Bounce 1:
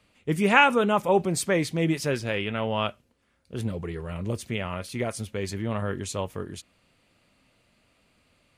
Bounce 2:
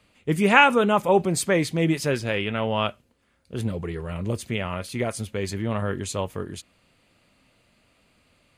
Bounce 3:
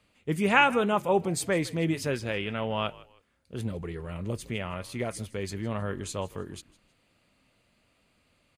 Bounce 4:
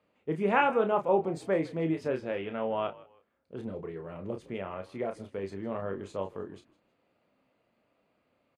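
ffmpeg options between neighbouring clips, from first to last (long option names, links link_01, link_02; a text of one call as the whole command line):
ffmpeg -i in.wav -af "bandreject=frequency=5600:width=19,volume=2.5dB" out.wav
ffmpeg -i in.wav -filter_complex "[0:a]asplit=3[link_01][link_02][link_03];[link_02]adelay=158,afreqshift=-60,volume=-20.5dB[link_04];[link_03]adelay=316,afreqshift=-120,volume=-30.4dB[link_05];[link_01][link_04][link_05]amix=inputs=3:normalize=0,volume=-5.5dB" out.wav
ffmpeg -i in.wav -filter_complex "[0:a]bandpass=frequency=540:width_type=q:width=0.72:csg=0,asplit=2[link_01][link_02];[link_02]adelay=31,volume=-7dB[link_03];[link_01][link_03]amix=inputs=2:normalize=0" out.wav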